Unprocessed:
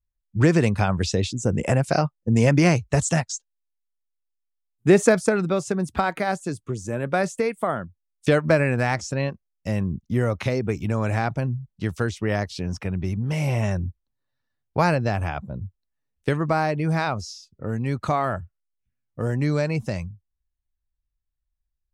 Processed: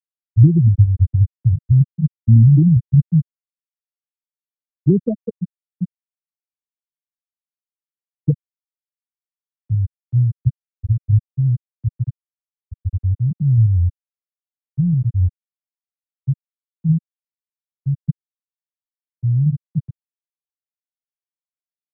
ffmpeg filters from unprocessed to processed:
-filter_complex "[0:a]asplit=3[s0][s1][s2];[s0]atrim=end=8.34,asetpts=PTS-STARTPTS,afade=t=out:st=8.336:d=0.004:c=hsin[s3];[s1]atrim=start=8.34:end=9.69,asetpts=PTS-STARTPTS,volume=0[s4];[s2]atrim=start=9.69,asetpts=PTS-STARTPTS,afade=t=in:d=0.004:c=hsin[s5];[s3][s4][s5]concat=n=3:v=0:a=1,aemphasis=mode=reproduction:type=bsi,afftfilt=real='re*gte(hypot(re,im),1.78)':imag='im*gte(hypot(re,im),1.78)':win_size=1024:overlap=0.75,acrossover=split=200|3000[s6][s7][s8];[s7]acompressor=threshold=0.0316:ratio=2.5[s9];[s6][s9][s8]amix=inputs=3:normalize=0,volume=1.5"

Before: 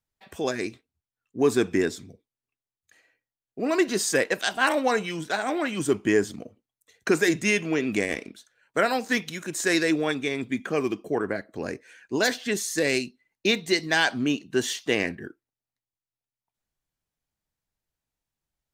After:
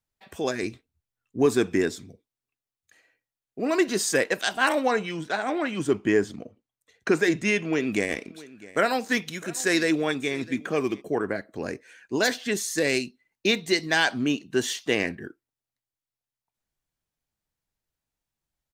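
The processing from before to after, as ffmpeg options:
-filter_complex "[0:a]asettb=1/sr,asplit=3[s0][s1][s2];[s0]atrim=end=0.634[s3];[s1]atrim=start=0.63:end=1.46,asetpts=PTS-STARTPTS,afade=t=in:d=0.004:c=qsin,afade=t=out:st=0.826:d=0.004:c=qsin,lowshelf=f=120:g=10[s4];[s2]atrim=start=1.456[s5];[s3][s4]acrossfade=d=0.004:c1=hsin:c2=qsin[s6];[s6][s5]acrossfade=d=0.004:c1=qsin:c2=hsin,asettb=1/sr,asplit=3[s7][s8][s9];[s7]atrim=end=4.874[s10];[s8]atrim=start=4.87:end=7.73,asetpts=PTS-STARTPTS,afade=t=in:d=0.004:c=qsin,afade=t=out:st=2.856:d=0.004:c=qsin,highshelf=f=6800:g=-11.5[s11];[s9]atrim=start=7.726[s12];[s10][s11]acrossfade=d=0.004:c1=hsin:c2=qsin[s13];[s13][s12]acrossfade=d=0.004:c1=qsin:c2=hsin,asplit=3[s14][s15][s16];[s14]afade=t=out:st=8.27:d=0.02[s17];[s15]aecho=1:1:656:0.1,afade=t=in:st=8.27:d=0.02,afade=t=out:st=11:d=0.02[s18];[s16]afade=t=in:st=11:d=0.02[s19];[s17][s18][s19]amix=inputs=3:normalize=0"

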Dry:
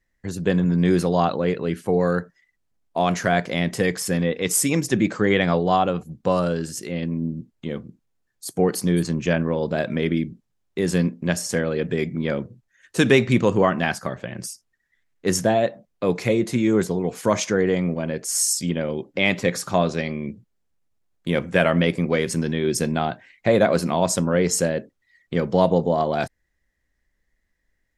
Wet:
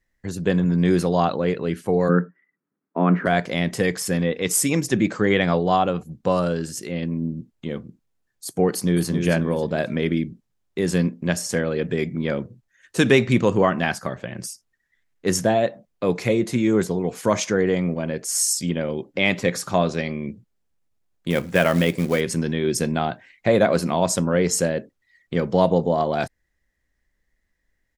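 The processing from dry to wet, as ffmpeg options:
-filter_complex "[0:a]asplit=3[s0][s1][s2];[s0]afade=t=out:st=2.08:d=0.02[s3];[s1]highpass=f=150:w=0.5412,highpass=f=150:w=1.3066,equalizer=f=180:t=q:w=4:g=7,equalizer=f=280:t=q:w=4:g=9,equalizer=f=400:t=q:w=4:g=6,equalizer=f=710:t=q:w=4:g=-7,equalizer=f=1300:t=q:w=4:g=5,lowpass=f=2000:w=0.5412,lowpass=f=2000:w=1.3066,afade=t=in:st=2.08:d=0.02,afade=t=out:st=3.25:d=0.02[s4];[s2]afade=t=in:st=3.25:d=0.02[s5];[s3][s4][s5]amix=inputs=3:normalize=0,asplit=2[s6][s7];[s7]afade=t=in:st=8.69:d=0.01,afade=t=out:st=9.13:d=0.01,aecho=0:1:270|540|810|1080:0.530884|0.159265|0.0477796|0.0143339[s8];[s6][s8]amix=inputs=2:normalize=0,asettb=1/sr,asplit=3[s9][s10][s11];[s9]atrim=end=21.304[s12];[s10]atrim=start=21.3:end=22.21,asetpts=PTS-STARTPTS,afade=t=in:d=0.004:c=qsin,afade=t=out:st=0.906:d=0.004:c=qsin,acrusher=bits=5:mode=log:mix=0:aa=0.000001[s13];[s11]atrim=start=22.206[s14];[s12][s13]acrossfade=d=0.004:c1=hsin:c2=qsin[s15];[s15][s14]acrossfade=d=0.004:c1=qsin:c2=hsin"

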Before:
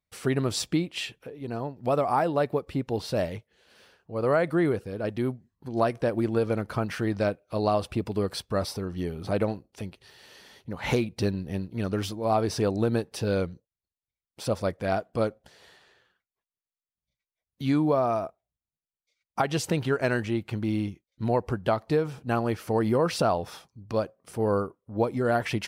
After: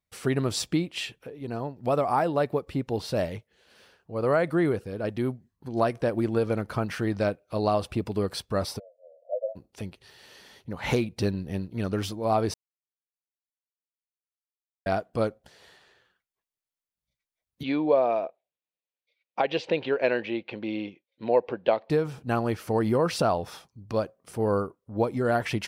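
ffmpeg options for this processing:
-filter_complex "[0:a]asplit=3[s0][s1][s2];[s0]afade=t=out:st=8.78:d=0.02[s3];[s1]asuperpass=centerf=590:order=12:qfactor=3.1,afade=t=in:st=8.78:d=0.02,afade=t=out:st=9.55:d=0.02[s4];[s2]afade=t=in:st=9.55:d=0.02[s5];[s3][s4][s5]amix=inputs=3:normalize=0,asettb=1/sr,asplit=3[s6][s7][s8];[s6]atrim=end=17.634[s9];[s7]atrim=start=17.63:end=21.9,asetpts=PTS-STARTPTS,afade=t=in:d=0.004:c=qsin,afade=t=out:st=4.266:d=0.004:c=qsin,highpass=300,equalizer=f=520:t=q:w=4:g=8,equalizer=f=1300:t=q:w=4:g=-8,equalizer=f=2500:t=q:w=4:g=6,equalizer=f=3700:t=q:w=4:g=3,lowpass=f=4000:w=0.5412,lowpass=f=4000:w=1.3066[s10];[s8]atrim=start=21.896[s11];[s9][s10]acrossfade=d=0.004:c1=hsin:c2=qsin[s12];[s12][s11]acrossfade=d=0.004:c1=qsin:c2=hsin,asplit=3[s13][s14][s15];[s13]atrim=end=12.54,asetpts=PTS-STARTPTS,afade=t=out:st=12.536:d=0.004:c=hsin[s16];[s14]atrim=start=12.54:end=14.86,asetpts=PTS-STARTPTS,volume=0[s17];[s15]atrim=start=14.86,asetpts=PTS-STARTPTS,afade=t=in:d=0.004:c=hsin[s18];[s16][s17][s18]concat=n=3:v=0:a=1"

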